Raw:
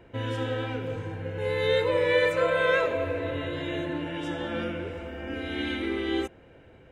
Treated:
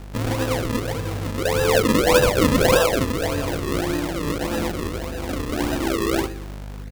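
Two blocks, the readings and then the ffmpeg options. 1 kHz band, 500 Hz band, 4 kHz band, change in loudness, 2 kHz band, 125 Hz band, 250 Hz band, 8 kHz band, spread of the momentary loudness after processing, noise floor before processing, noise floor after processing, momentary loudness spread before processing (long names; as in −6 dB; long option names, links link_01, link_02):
+8.5 dB, +5.0 dB, +7.5 dB, +6.5 dB, +3.5 dB, +9.5 dB, +9.5 dB, can't be measured, 12 LU, −53 dBFS, −34 dBFS, 12 LU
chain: -filter_complex "[0:a]aeval=exprs='val(0)+0.00794*(sin(2*PI*50*n/s)+sin(2*PI*2*50*n/s)/2+sin(2*PI*3*50*n/s)/3+sin(2*PI*4*50*n/s)/4+sin(2*PI*5*50*n/s)/5)':channel_layout=same,asplit=2[link_01][link_02];[link_02]adelay=120,lowpass=frequency=1400:poles=1,volume=-13dB,asplit=2[link_03][link_04];[link_04]adelay=120,lowpass=frequency=1400:poles=1,volume=0.49,asplit=2[link_05][link_06];[link_06]adelay=120,lowpass=frequency=1400:poles=1,volume=0.49,asplit=2[link_07][link_08];[link_08]adelay=120,lowpass=frequency=1400:poles=1,volume=0.49,asplit=2[link_09][link_10];[link_10]adelay=120,lowpass=frequency=1400:poles=1,volume=0.49[link_11];[link_01][link_03][link_05][link_07][link_09][link_11]amix=inputs=6:normalize=0,acrusher=samples=40:mix=1:aa=0.000001:lfo=1:lforange=40:lforate=1.7,volume=6.5dB"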